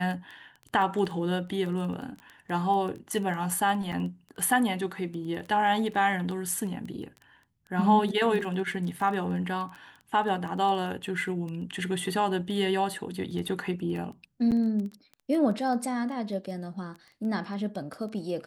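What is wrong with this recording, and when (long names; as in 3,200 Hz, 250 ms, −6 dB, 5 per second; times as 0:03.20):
surface crackle 10 per second −34 dBFS
0:03.92–0:03.93: drop-out 7 ms
0:14.51–0:14.52: drop-out 8.1 ms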